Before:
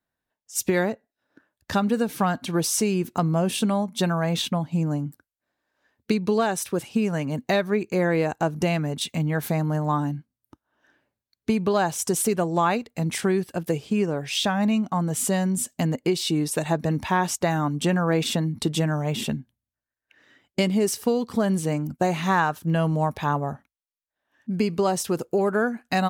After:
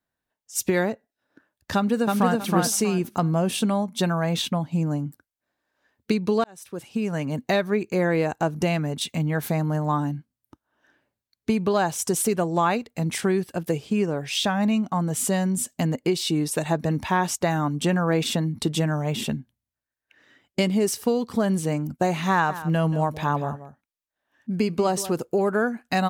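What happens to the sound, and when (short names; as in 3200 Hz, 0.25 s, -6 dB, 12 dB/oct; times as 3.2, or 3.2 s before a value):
1.75–2.38 echo throw 0.32 s, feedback 25%, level -1.5 dB
6.44–7.25 fade in
22.31–25.12 echo 0.183 s -14 dB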